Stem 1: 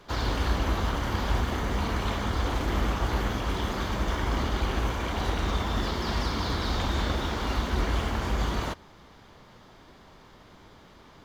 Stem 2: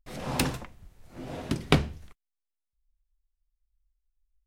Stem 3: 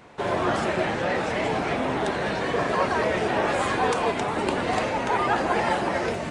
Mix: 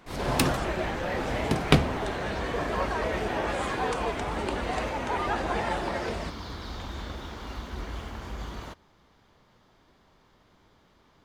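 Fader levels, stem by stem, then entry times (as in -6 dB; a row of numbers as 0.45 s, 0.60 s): -9.5 dB, +2.0 dB, -6.0 dB; 0.00 s, 0.00 s, 0.00 s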